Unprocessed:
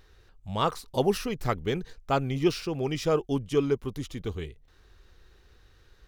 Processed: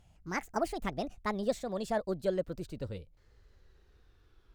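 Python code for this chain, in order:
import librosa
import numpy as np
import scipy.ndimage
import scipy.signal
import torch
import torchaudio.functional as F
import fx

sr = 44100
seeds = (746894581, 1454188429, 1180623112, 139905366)

y = fx.speed_glide(x, sr, from_pct=180, to_pct=87)
y = fx.tilt_shelf(y, sr, db=3.0, hz=1100.0)
y = F.gain(torch.from_numpy(y), -8.0).numpy()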